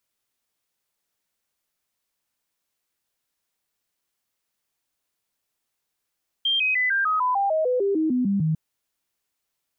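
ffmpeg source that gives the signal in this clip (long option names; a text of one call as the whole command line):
ffmpeg -f lavfi -i "aevalsrc='0.112*clip(min(mod(t,0.15),0.15-mod(t,0.15))/0.005,0,1)*sin(2*PI*3180*pow(2,-floor(t/0.15)/3)*mod(t,0.15))':duration=2.1:sample_rate=44100" out.wav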